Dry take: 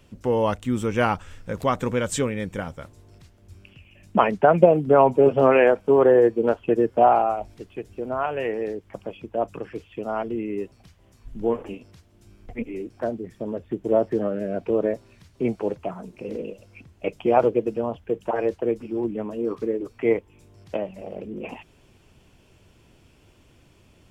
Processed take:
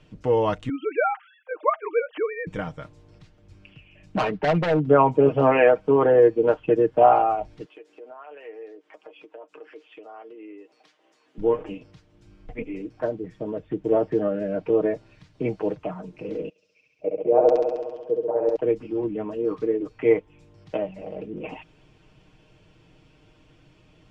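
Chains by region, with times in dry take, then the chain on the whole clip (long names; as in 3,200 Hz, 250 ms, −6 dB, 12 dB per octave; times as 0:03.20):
0:00.69–0:02.47: three sine waves on the formant tracks + high-pass filter 450 Hz
0:04.16–0:04.85: Gaussian smoothing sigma 2.3 samples + hard clipping −19 dBFS
0:07.65–0:11.38: high-pass filter 340 Hz 24 dB per octave + downward compressor 3 to 1, threshold −44 dBFS + double-tracking delay 13 ms −11.5 dB
0:16.49–0:18.56: bass and treble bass +8 dB, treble −6 dB + auto-filter band-pass square 1 Hz 520–5,600 Hz + flutter between parallel walls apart 11.6 metres, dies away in 1.4 s
whole clip: low-pass filter 4,800 Hz 12 dB per octave; comb filter 6.5 ms, depth 62%; level −1 dB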